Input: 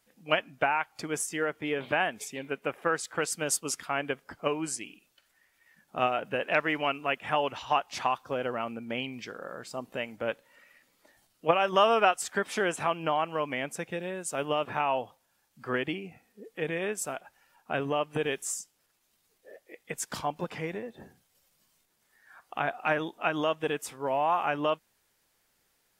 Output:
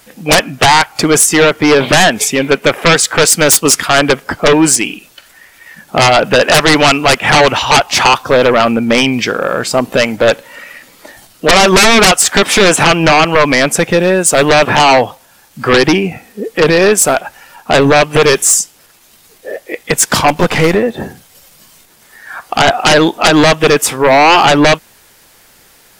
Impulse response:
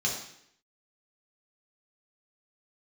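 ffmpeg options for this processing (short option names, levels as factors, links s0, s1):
-filter_complex "[0:a]aeval=exprs='0.398*sin(PI/2*7.94*val(0)/0.398)':c=same,asettb=1/sr,asplit=3[s0][s1][s2];[s0]atrim=end=20.284[s3];[s1]atrim=start=20.28:end=20.75,asetpts=PTS-STARTPTS,afade=t=in:d=0.004:c=qsin,afade=t=out:st=0.466:d=0.004:c=qsin,aeval=exprs='0.398*(cos(1*acos(clip(val(0)/0.398,-1,1)))-cos(1*PI/2))+0.0447*(cos(6*acos(clip(val(0)/0.398,-1,1)))-cos(6*PI/2))':c=same[s4];[s2]atrim=start=20.746[s5];[s3][s4]acrossfade=d=0.004:c1=hsin:c2=qsin[s6];[s6][s5]acrossfade=d=0.004:c1=qsin:c2=hsin,volume=1.78"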